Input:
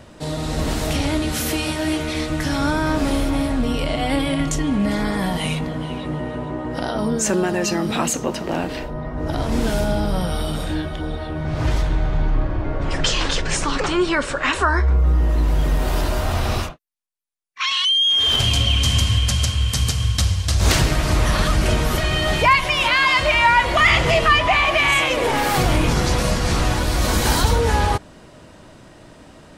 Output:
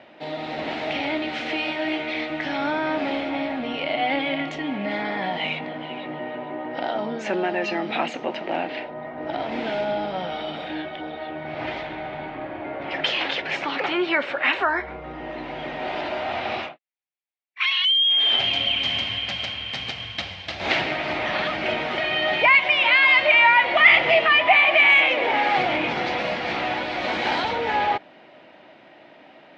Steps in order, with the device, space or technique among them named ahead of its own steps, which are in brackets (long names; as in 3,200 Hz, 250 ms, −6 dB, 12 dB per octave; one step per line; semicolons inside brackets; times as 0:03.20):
phone earpiece (loudspeaker in its box 380–3,400 Hz, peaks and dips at 450 Hz −6 dB, 760 Hz +4 dB, 1,100 Hz −8 dB, 1,500 Hz −3 dB, 2,200 Hz +5 dB)